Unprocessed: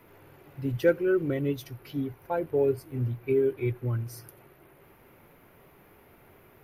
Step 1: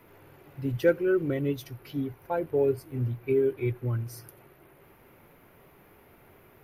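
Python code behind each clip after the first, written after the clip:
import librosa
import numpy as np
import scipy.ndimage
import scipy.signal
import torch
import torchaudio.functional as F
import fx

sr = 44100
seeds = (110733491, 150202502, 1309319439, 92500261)

y = x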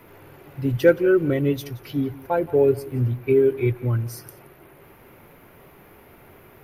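y = x + 10.0 ** (-19.0 / 20.0) * np.pad(x, (int(174 * sr / 1000.0), 0))[:len(x)]
y = y * 10.0 ** (7.0 / 20.0)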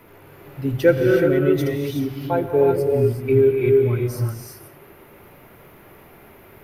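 y = fx.rev_gated(x, sr, seeds[0], gate_ms=400, shape='rising', drr_db=0.5)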